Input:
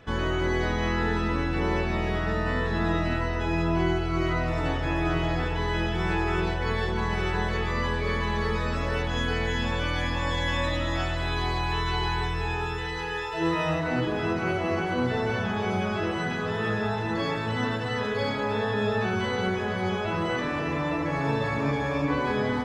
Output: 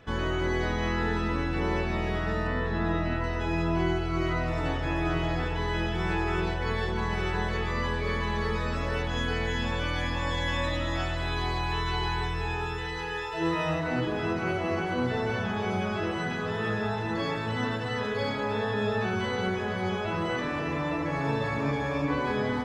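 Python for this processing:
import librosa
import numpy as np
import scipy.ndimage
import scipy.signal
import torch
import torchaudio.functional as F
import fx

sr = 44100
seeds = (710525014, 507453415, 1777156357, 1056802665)

y = fx.high_shelf(x, sr, hz=5500.0, db=-12.0, at=(2.47, 3.24))
y = F.gain(torch.from_numpy(y), -2.0).numpy()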